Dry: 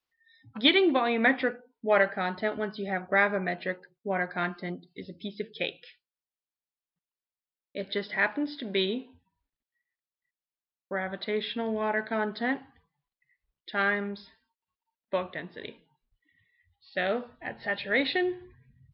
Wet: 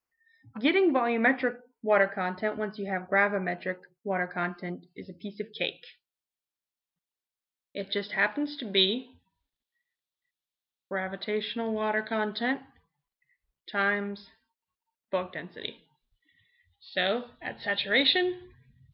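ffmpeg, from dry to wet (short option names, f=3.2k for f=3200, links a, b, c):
-af "asetnsamples=n=441:p=0,asendcmd='1.09 equalizer g -7.5;5.53 equalizer g 3.5;8.77 equalizer g 9.5;11 equalizer g 0;11.77 equalizer g 8;12.52 equalizer g -0.5;15.61 equalizer g 11',equalizer=f=3.6k:t=o:w=0.58:g=-14.5"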